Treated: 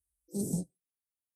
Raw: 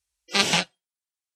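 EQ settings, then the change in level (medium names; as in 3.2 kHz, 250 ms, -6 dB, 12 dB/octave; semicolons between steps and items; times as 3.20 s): elliptic band-stop 360–9700 Hz, stop band 80 dB; peaking EQ 350 Hz -6 dB 0.38 oct; 0.0 dB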